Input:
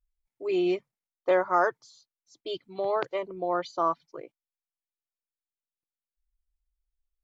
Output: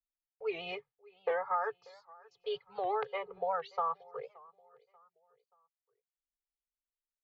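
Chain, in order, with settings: gate with hold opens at -52 dBFS; Chebyshev band-stop 210–420 Hz, order 4; tilt EQ +2 dB/octave; comb 2.4 ms, depth 96%; compression 5:1, threshold -28 dBFS, peak gain reduction 11.5 dB; distance through air 380 m; feedback delay 580 ms, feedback 39%, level -23.5 dB; warped record 78 rpm, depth 160 cents

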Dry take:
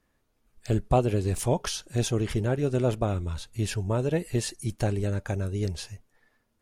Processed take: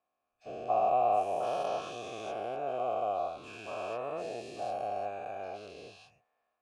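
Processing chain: every event in the spectrogram widened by 480 ms; vowel filter a; trim -3 dB

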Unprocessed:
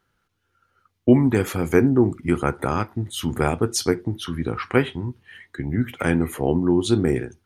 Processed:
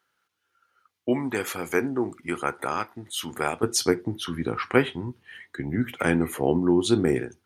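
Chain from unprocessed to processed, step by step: high-pass 850 Hz 6 dB/octave, from 3.63 s 200 Hz

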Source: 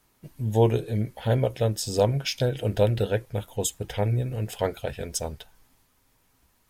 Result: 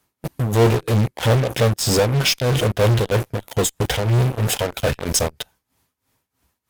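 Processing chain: high-pass 54 Hz 24 dB/octave; tremolo 3.1 Hz, depth 87%; in parallel at -4 dB: fuzz box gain 45 dB, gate -44 dBFS

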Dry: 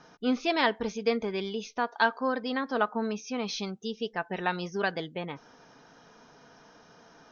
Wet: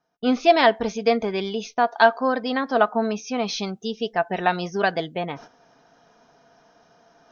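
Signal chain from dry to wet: gate -47 dBFS, range -28 dB; peaking EQ 690 Hz +9.5 dB 0.23 oct; reverse; upward compressor, threshold -46 dBFS; reverse; trim +6 dB

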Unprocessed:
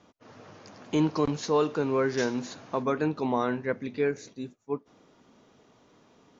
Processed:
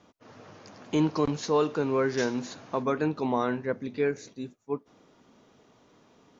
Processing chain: 3.56–3.96 s: dynamic bell 2.2 kHz, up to -6 dB, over -50 dBFS, Q 1.5

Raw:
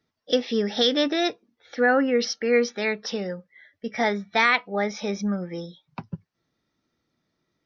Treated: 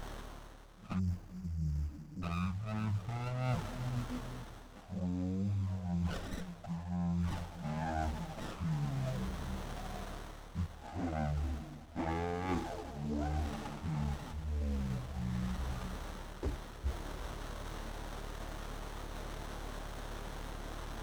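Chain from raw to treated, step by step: added noise white -44 dBFS; on a send at -16.5 dB: reverberation RT60 1.4 s, pre-delay 116 ms; on the sum: touch-sensitive flanger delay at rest 10.4 ms, full sweep at -16.5 dBFS; mains buzz 100 Hz, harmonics 32, -48 dBFS -8 dB/octave; reverse; compression 12:1, threshold -37 dBFS, peak gain reduction 20.5 dB; reverse; wide varispeed 0.364×; spectral selection erased 0.99–2.22 s, 330–4600 Hz; sliding maximum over 17 samples; trim +4 dB

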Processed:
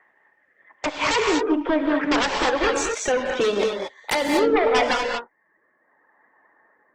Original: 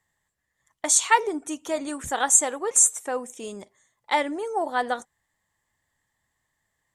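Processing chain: steep low-pass 2.4 kHz 36 dB/octave, from 2.51 s 4.5 kHz, from 4.51 s 1.7 kHz; reverb removal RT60 0.57 s; high-pass 300 Hz 24 dB/octave; compression 2.5:1, threshold -36 dBFS, peak gain reduction 15.5 dB; rotary cabinet horn 0.75 Hz; sine folder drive 18 dB, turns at -19 dBFS; gated-style reverb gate 260 ms rising, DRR 1.5 dB; trim +1.5 dB; Opus 16 kbps 48 kHz

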